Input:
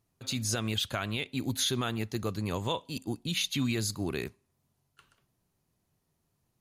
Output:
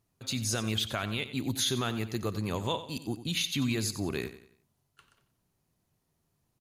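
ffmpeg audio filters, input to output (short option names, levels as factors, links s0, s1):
-af "aecho=1:1:91|182|273|364:0.224|0.0873|0.0341|0.0133"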